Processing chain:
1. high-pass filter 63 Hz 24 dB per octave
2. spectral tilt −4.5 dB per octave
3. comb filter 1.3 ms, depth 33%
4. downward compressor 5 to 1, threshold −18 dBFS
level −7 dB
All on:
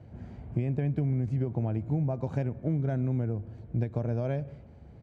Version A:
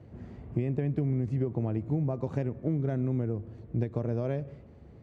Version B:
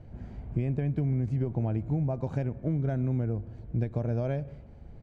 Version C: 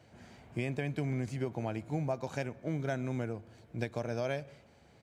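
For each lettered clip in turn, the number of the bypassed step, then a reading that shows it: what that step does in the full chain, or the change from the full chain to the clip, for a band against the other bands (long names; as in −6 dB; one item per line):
3, 500 Hz band +3.0 dB
1, change in crest factor −1.5 dB
2, 2 kHz band +11.0 dB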